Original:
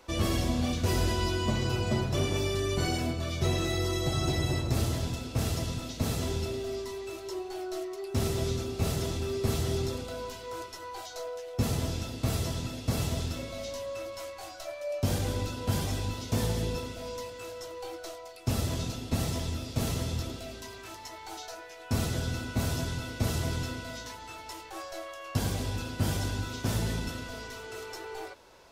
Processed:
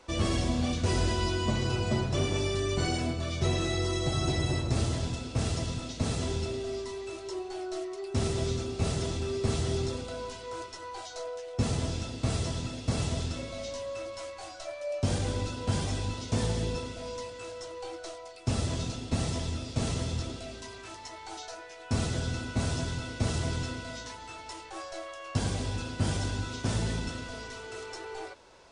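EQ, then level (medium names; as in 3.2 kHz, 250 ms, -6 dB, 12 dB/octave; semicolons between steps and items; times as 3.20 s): brick-wall FIR low-pass 10 kHz; 0.0 dB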